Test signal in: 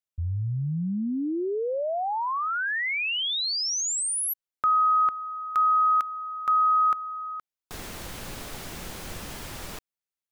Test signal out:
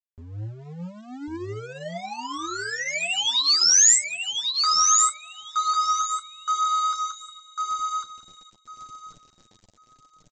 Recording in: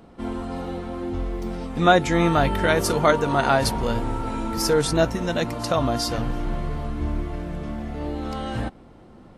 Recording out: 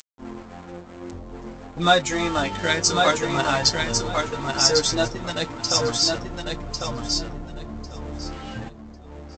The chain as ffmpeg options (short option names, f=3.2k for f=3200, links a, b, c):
-filter_complex "[0:a]afftdn=nr=23:nf=-32,highshelf=f=5k:g=10.5,acompressor=mode=upward:threshold=-40dB:ratio=2.5:attack=43:release=27:knee=2.83:detection=peak,asplit=2[a][b];[b]adelay=28,volume=-13.5dB[c];[a][c]amix=inputs=2:normalize=0,aresample=16000,aeval=exprs='sgn(val(0))*max(abs(val(0))-0.02,0)':c=same,aresample=44100,flanger=delay=6.1:depth=6.2:regen=10:speed=0.55:shape=triangular,crystalizer=i=4:c=0,asplit=2[d][e];[e]aecho=0:1:1099|2198|3297:0.631|0.114|0.0204[f];[d][f]amix=inputs=2:normalize=0,volume=-1dB"